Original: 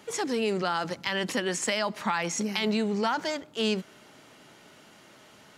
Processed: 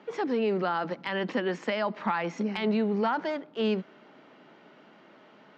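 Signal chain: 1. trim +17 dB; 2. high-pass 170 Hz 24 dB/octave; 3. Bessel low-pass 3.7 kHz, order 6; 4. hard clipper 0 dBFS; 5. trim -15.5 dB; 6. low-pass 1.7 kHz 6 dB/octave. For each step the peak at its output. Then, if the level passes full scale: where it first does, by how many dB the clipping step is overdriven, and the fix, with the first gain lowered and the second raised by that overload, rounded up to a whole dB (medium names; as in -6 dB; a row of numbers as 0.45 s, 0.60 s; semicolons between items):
+5.5 dBFS, +6.0 dBFS, +4.5 dBFS, 0.0 dBFS, -15.5 dBFS, -16.0 dBFS; step 1, 4.5 dB; step 1 +12 dB, step 5 -10.5 dB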